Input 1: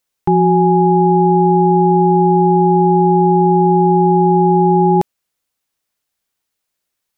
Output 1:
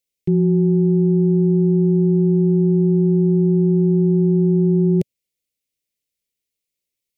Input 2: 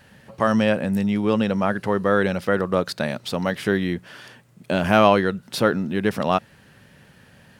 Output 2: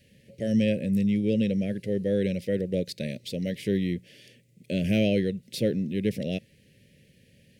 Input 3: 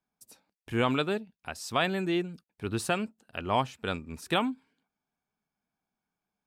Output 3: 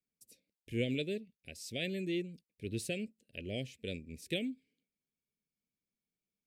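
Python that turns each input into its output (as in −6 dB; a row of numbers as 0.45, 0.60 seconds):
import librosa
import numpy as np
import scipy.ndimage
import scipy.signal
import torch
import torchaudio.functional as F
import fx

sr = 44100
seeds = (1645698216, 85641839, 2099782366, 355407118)

y = scipy.signal.sosfilt(scipy.signal.cheby1(3, 1.0, [540.0, 2100.0], 'bandstop', fs=sr, output='sos'), x)
y = fx.dynamic_eq(y, sr, hz=140.0, q=0.96, threshold_db=-30.0, ratio=4.0, max_db=7)
y = y * 10.0 ** (-6.0 / 20.0)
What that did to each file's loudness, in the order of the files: −4.5, −6.0, −8.0 LU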